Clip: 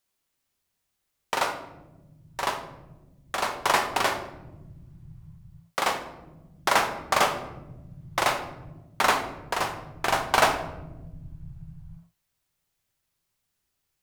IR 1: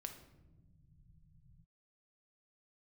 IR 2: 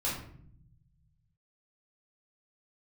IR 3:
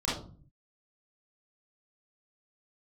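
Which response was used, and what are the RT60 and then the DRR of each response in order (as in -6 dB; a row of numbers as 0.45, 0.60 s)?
1; not exponential, 0.60 s, 0.40 s; 5.5, -7.0, -8.0 dB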